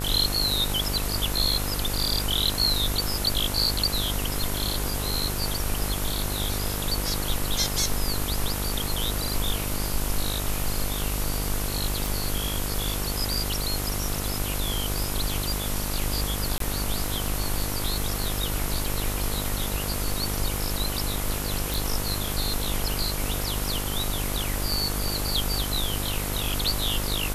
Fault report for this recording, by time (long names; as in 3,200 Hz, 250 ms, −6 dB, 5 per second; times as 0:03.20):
mains buzz 50 Hz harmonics 30 −31 dBFS
0:12.06: click
0:16.58–0:16.60: drop-out 23 ms
0:21.74: click